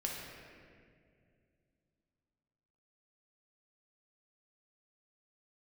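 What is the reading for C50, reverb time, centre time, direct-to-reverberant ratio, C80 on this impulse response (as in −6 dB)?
0.0 dB, 2.2 s, 110 ms, −2.5 dB, 2.0 dB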